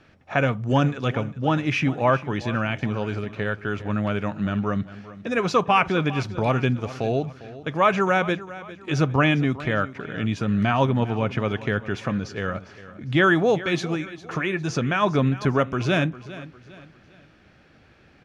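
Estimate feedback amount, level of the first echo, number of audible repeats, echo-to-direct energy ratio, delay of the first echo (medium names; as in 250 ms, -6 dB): 39%, -16.5 dB, 3, -16.0 dB, 403 ms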